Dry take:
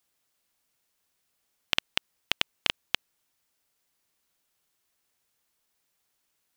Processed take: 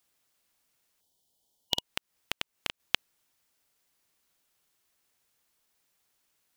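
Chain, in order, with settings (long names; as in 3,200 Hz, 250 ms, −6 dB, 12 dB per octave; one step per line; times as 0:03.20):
0:01.00–0:01.82: gain on a spectral selection 970–2,900 Hz −17 dB
0:01.77–0:02.80: downward compressor 6 to 1, threshold −31 dBFS, peak gain reduction 11.5 dB
level +1.5 dB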